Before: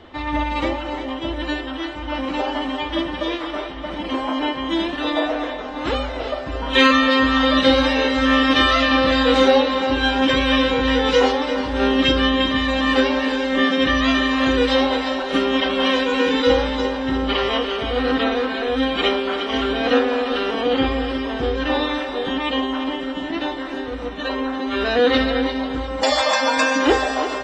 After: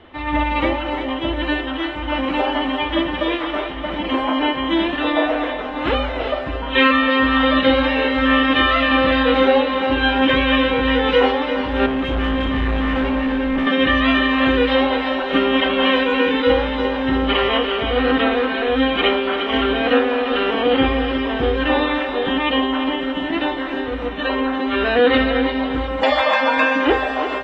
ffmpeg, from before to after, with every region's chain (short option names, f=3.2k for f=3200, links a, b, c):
-filter_complex "[0:a]asettb=1/sr,asplit=3[a][b][c];[a]atrim=end=11.864[d];[b]atrim=start=11.86:end=13.67,asetpts=PTS-STARTPTS,afade=t=in:d=0.004:c=qsin,afade=t=out:st=1.806:d=0.004:c=qsin,asubboost=boost=9.5:cutoff=180,volume=19.5dB,asoftclip=hard,volume=-19.5dB,lowpass=f=1.3k:p=1[e];[c]atrim=start=13.666[f];[d][e]acrossfade=d=0.004:c1=hsin:c2=qsin[g];[g][f]acrossfade=d=0.004:c1=qsin:c2=hsin,acrossover=split=4200[h][i];[i]acompressor=threshold=-44dB:ratio=4:attack=1:release=60[j];[h][j]amix=inputs=2:normalize=0,highshelf=f=4k:t=q:w=1.5:g=-10,dynaudnorm=f=170:g=3:m=5.5dB,volume=-2dB"